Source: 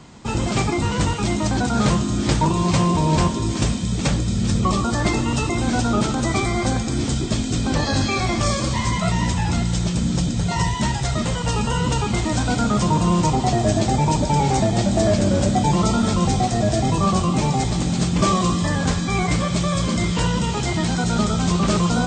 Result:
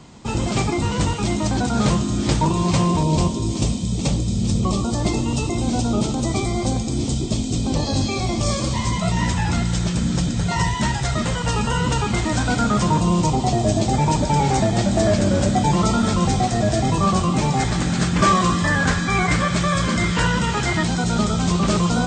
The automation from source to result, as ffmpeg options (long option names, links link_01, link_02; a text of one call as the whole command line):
ffmpeg -i in.wav -af "asetnsamples=nb_out_samples=441:pad=0,asendcmd='3.03 equalizer g -14.5;8.48 equalizer g -5.5;9.17 equalizer g 4;13 equalizer g -6;13.93 equalizer g 3;17.56 equalizer g 10.5;20.83 equalizer g 0',equalizer=frequency=1600:width_type=o:width=0.87:gain=-3" out.wav